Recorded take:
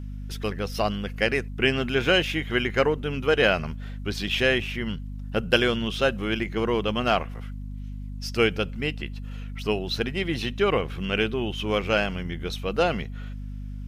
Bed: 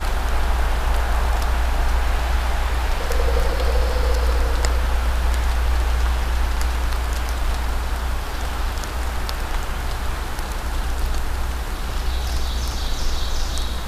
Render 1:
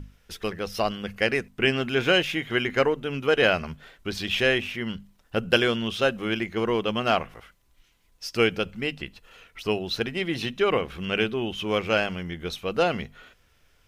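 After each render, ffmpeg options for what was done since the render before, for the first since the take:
-af "bandreject=f=50:t=h:w=6,bandreject=f=100:t=h:w=6,bandreject=f=150:t=h:w=6,bandreject=f=200:t=h:w=6,bandreject=f=250:t=h:w=6"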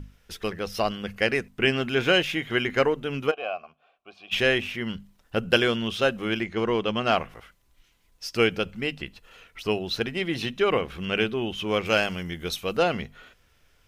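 -filter_complex "[0:a]asplit=3[s0][s1][s2];[s0]afade=t=out:st=3.3:d=0.02[s3];[s1]asplit=3[s4][s5][s6];[s4]bandpass=f=730:t=q:w=8,volume=1[s7];[s5]bandpass=f=1090:t=q:w=8,volume=0.501[s8];[s6]bandpass=f=2440:t=q:w=8,volume=0.355[s9];[s7][s8][s9]amix=inputs=3:normalize=0,afade=t=in:st=3.3:d=0.02,afade=t=out:st=4.31:d=0.02[s10];[s2]afade=t=in:st=4.31:d=0.02[s11];[s3][s10][s11]amix=inputs=3:normalize=0,asettb=1/sr,asplit=3[s12][s13][s14];[s12]atrim=end=6.424[s15];[s13]atrim=start=6.42:end=7.12,asetpts=PTS-STARTPTS,afade=t=in:d=0.004:c=qsin,afade=t=out:st=0.696:d=0.004:c=qsin,lowpass=8000[s16];[s14]atrim=start=7.116[s17];[s15][s16]acrossfade=d=0.004:c1=hsin:c2=qsin[s18];[s18][s17]acrossfade=d=0.004:c1=qsin:c2=hsin,asettb=1/sr,asplit=3[s19][s20][s21];[s19]atrim=end=11.854[s22];[s20]atrim=start=11.85:end=12.77,asetpts=PTS-STARTPTS,afade=t=in:d=0.004:c=qsin,afade=t=out:st=0.916:d=0.004:c=qsin,highshelf=f=5000:g=10[s23];[s21]atrim=start=12.766[s24];[s22][s23]acrossfade=d=0.004:c1=hsin:c2=qsin[s25];[s25][s24]acrossfade=d=0.004:c1=qsin:c2=hsin"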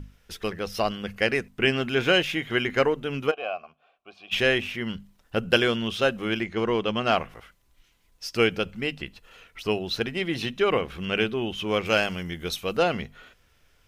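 -af anull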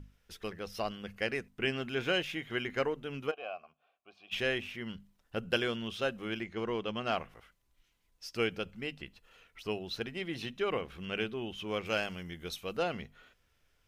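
-af "volume=0.316"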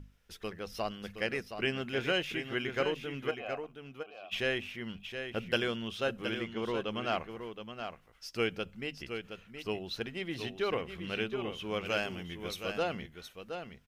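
-af "aecho=1:1:720:0.398"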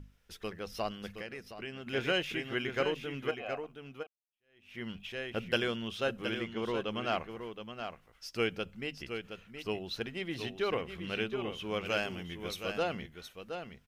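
-filter_complex "[0:a]asettb=1/sr,asplit=3[s0][s1][s2];[s0]atrim=end=1.214[s3];[s1]atrim=start=1.21:end=1.87,asetpts=PTS-STARTPTS,afade=t=in:d=0.004:c=qsin,afade=t=out:st=0.656:d=0.004:c=qsin,acompressor=threshold=0.00501:ratio=2:attack=3.2:release=140:knee=1:detection=peak[s4];[s2]atrim=start=1.866[s5];[s3][s4]acrossfade=d=0.004:c1=hsin:c2=qsin[s6];[s6][s5]acrossfade=d=0.004:c1=qsin:c2=hsin,asplit=2[s7][s8];[s7]atrim=end=4.07,asetpts=PTS-STARTPTS,afade=t=out:st=4.066:d=0.004:c=hsin[s9];[s8]atrim=start=4.07,asetpts=PTS-STARTPTS,afade=t=in:d=0.71:c=exp[s10];[s9][s10]concat=n=2:v=0:a=1"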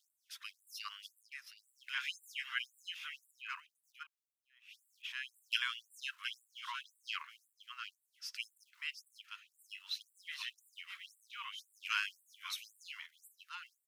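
-filter_complex "[0:a]acrossover=split=160|1000|1800[s0][s1][s2][s3];[s0]aeval=exprs='val(0)*gte(abs(val(0)),0.00178)':c=same[s4];[s4][s1][s2][s3]amix=inputs=4:normalize=0,afftfilt=real='re*gte(b*sr/1024,870*pow(7500/870,0.5+0.5*sin(2*PI*1.9*pts/sr)))':imag='im*gte(b*sr/1024,870*pow(7500/870,0.5+0.5*sin(2*PI*1.9*pts/sr)))':win_size=1024:overlap=0.75"

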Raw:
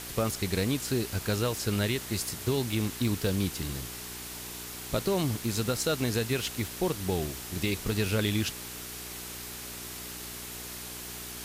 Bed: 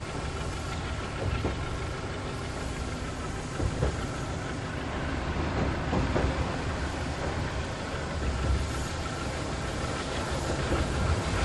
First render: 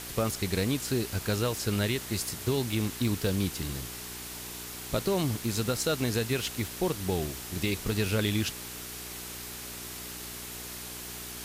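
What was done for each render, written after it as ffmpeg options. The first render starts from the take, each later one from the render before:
-af anull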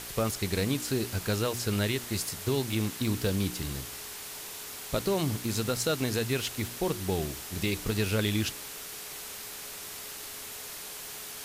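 -af "bandreject=f=60:t=h:w=4,bandreject=f=120:t=h:w=4,bandreject=f=180:t=h:w=4,bandreject=f=240:t=h:w=4,bandreject=f=300:t=h:w=4,bandreject=f=360:t=h:w=4"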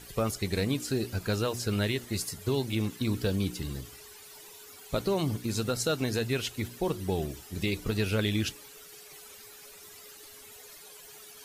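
-af "afftdn=nr=14:nf=-42"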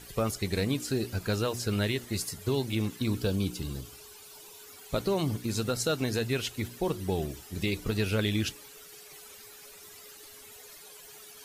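-filter_complex "[0:a]asettb=1/sr,asplit=3[s0][s1][s2];[s0]atrim=end=3.184[s3];[s1]atrim=start=3.18:end=4.56,asetpts=PTS-STARTPTS,afade=t=in:d=0.004:c=qsin,afade=t=out:st=1.376:d=0.004:c=qsin,equalizer=f=1900:w=5.8:g=-9.5[s4];[s2]atrim=start=4.556[s5];[s3][s4]acrossfade=d=0.004:c1=hsin:c2=qsin[s6];[s6][s5]acrossfade=d=0.004:c1=qsin:c2=hsin"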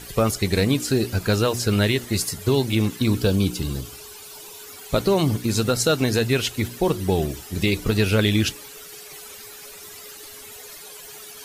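-af "volume=2.82"

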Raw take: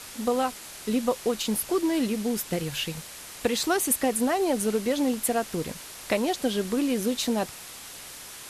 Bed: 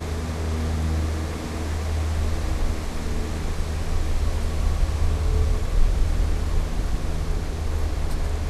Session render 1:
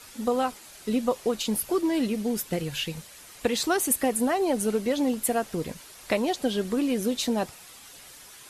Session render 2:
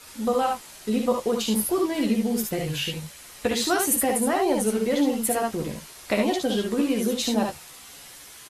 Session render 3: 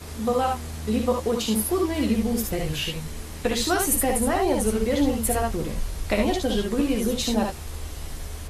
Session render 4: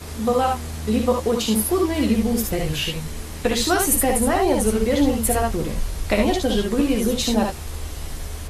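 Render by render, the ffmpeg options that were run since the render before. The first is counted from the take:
-af "afftdn=nr=8:nf=-43"
-filter_complex "[0:a]asplit=2[s0][s1];[s1]adelay=14,volume=0.447[s2];[s0][s2]amix=inputs=2:normalize=0,aecho=1:1:59|72:0.501|0.562"
-filter_complex "[1:a]volume=0.316[s0];[0:a][s0]amix=inputs=2:normalize=0"
-af "volume=1.5"

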